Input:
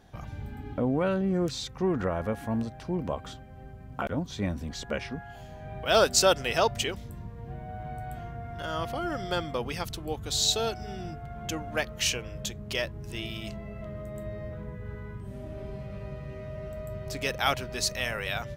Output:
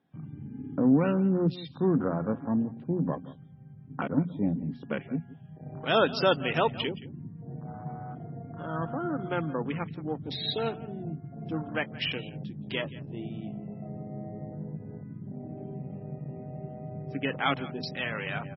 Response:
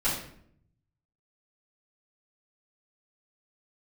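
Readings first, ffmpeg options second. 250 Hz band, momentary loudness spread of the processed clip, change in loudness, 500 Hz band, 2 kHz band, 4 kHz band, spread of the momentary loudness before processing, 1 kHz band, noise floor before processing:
+4.5 dB, 16 LU, −0.5 dB, −1.5 dB, −1.5 dB, −5.0 dB, 15 LU, −1.5 dB, −45 dBFS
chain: -af "afwtdn=0.0178,highpass=frequency=120:width=0.5412,highpass=frequency=120:width=1.3066,equalizer=frequency=160:width_type=q:width=4:gain=9,equalizer=frequency=270:width_type=q:width=4:gain=9,equalizer=frequency=630:width_type=q:width=4:gain=-4,equalizer=frequency=4400:width_type=q:width=4:gain=-9,lowpass=frequency=4900:width=0.5412,lowpass=frequency=4900:width=1.3066,bandreject=frequency=60:width_type=h:width=6,bandreject=frequency=120:width_type=h:width=6,bandreject=frequency=180:width_type=h:width=6,bandreject=frequency=240:width_type=h:width=6,aecho=1:1:174:0.126" -ar 24000 -c:a libmp3lame -b:a 16k

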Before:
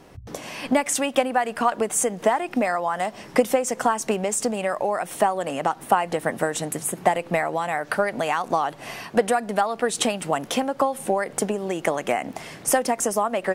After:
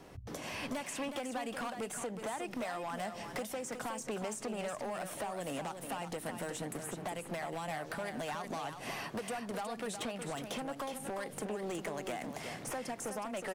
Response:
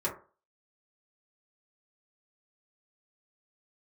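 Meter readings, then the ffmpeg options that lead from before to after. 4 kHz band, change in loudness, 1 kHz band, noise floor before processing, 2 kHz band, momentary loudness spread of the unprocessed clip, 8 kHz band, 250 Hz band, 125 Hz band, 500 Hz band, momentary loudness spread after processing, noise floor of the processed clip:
−12.0 dB, −16.0 dB, −17.0 dB, −44 dBFS, −14.0 dB, 5 LU, −16.5 dB, −13.5 dB, −10.0 dB, −16.5 dB, 2 LU, −48 dBFS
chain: -filter_complex "[0:a]acrossover=split=280|2800[link_01][link_02][link_03];[link_01]acompressor=threshold=-38dB:ratio=4[link_04];[link_02]acompressor=threshold=-32dB:ratio=4[link_05];[link_03]acompressor=threshold=-41dB:ratio=4[link_06];[link_04][link_05][link_06]amix=inputs=3:normalize=0,volume=29.5dB,asoftclip=hard,volume=-29.5dB,aecho=1:1:366:0.422,volume=-5dB"

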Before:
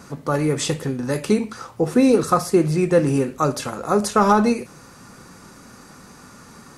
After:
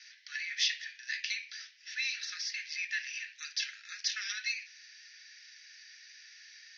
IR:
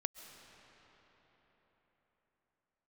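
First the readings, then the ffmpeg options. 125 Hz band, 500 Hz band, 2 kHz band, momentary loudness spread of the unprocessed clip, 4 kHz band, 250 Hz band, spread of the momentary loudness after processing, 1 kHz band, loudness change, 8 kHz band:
below −40 dB, below −40 dB, −3.0 dB, 9 LU, 0.0 dB, below −40 dB, 20 LU, −38.0 dB, −15.5 dB, −9.5 dB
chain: -af "asuperpass=centerf=3200:order=20:qfactor=0.75"

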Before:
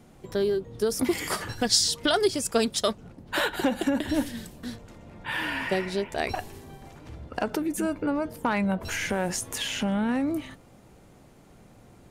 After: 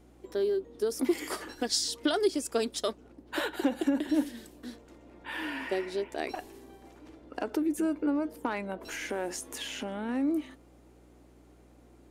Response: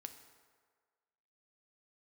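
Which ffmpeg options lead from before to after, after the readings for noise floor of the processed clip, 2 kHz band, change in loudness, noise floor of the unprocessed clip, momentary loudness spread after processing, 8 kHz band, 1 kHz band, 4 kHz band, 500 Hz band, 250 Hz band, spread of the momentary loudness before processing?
−57 dBFS, −7.5 dB, −4.5 dB, −54 dBFS, 16 LU, −7.5 dB, −6.5 dB, −7.5 dB, −3.5 dB, −2.5 dB, 16 LU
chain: -af "lowshelf=frequency=200:width_type=q:width=3:gain=-13.5,aeval=exprs='val(0)+0.00282*(sin(2*PI*60*n/s)+sin(2*PI*2*60*n/s)/2+sin(2*PI*3*60*n/s)/3+sin(2*PI*4*60*n/s)/4+sin(2*PI*5*60*n/s)/5)':channel_layout=same,volume=-7.5dB"

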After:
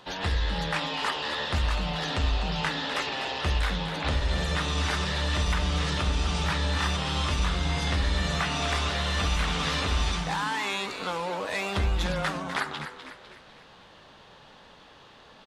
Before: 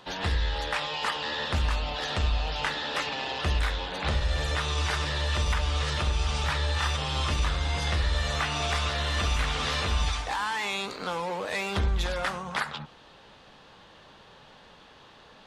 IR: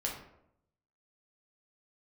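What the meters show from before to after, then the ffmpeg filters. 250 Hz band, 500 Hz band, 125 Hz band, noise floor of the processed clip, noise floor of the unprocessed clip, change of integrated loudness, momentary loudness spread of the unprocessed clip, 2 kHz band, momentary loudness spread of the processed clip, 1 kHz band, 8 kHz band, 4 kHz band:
+5.5 dB, +0.5 dB, +0.5 dB, −52 dBFS, −53 dBFS, +0.5 dB, 4 LU, +0.5 dB, 4 LU, +0.5 dB, +0.5 dB, +0.5 dB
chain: -filter_complex "[0:a]asplit=6[link_01][link_02][link_03][link_04][link_05][link_06];[link_02]adelay=250,afreqshift=110,volume=-10dB[link_07];[link_03]adelay=500,afreqshift=220,volume=-16.9dB[link_08];[link_04]adelay=750,afreqshift=330,volume=-23.9dB[link_09];[link_05]adelay=1000,afreqshift=440,volume=-30.8dB[link_10];[link_06]adelay=1250,afreqshift=550,volume=-37.7dB[link_11];[link_01][link_07][link_08][link_09][link_10][link_11]amix=inputs=6:normalize=0"

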